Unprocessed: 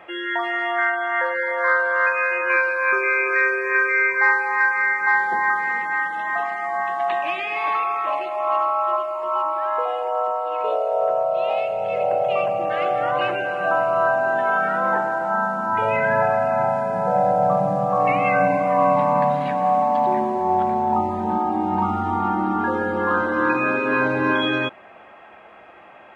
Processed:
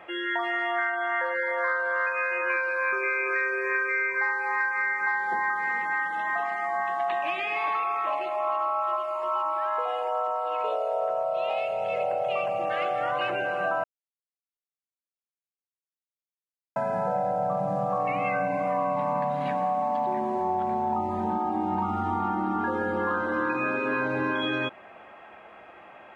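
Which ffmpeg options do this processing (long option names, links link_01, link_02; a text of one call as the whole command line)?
ffmpeg -i in.wav -filter_complex "[0:a]asettb=1/sr,asplit=3[link_01][link_02][link_03];[link_01]atrim=end=8.824[link_04];[link_02]atrim=start=8.82:end=13.3,asetpts=PTS-STARTPTS,afade=type=in:duration=0.004:curve=qsin,afade=type=out:start_time=4.476:duration=0.004:curve=qsin,tiltshelf=frequency=970:gain=-3[link_05];[link_03]atrim=start=13.296[link_06];[link_04][link_05]acrossfade=duration=0.004:curve1=hsin:curve2=qsin[link_07];[link_07][link_06]acrossfade=duration=0.004:curve1=qsin:curve2=hsin,asplit=3[link_08][link_09][link_10];[link_08]atrim=end=13.84,asetpts=PTS-STARTPTS,afade=type=out:start_time=13.836:duration=0.004:curve=hsin[link_11];[link_09]atrim=start=13.84:end=16.76,asetpts=PTS-STARTPTS,volume=0[link_12];[link_10]atrim=start=16.76,asetpts=PTS-STARTPTS,afade=type=in:duration=0.004:curve=hsin[link_13];[link_11][link_12][link_13]concat=n=3:v=0:a=1,acompressor=threshold=-21dB:ratio=6,volume=-2.5dB" out.wav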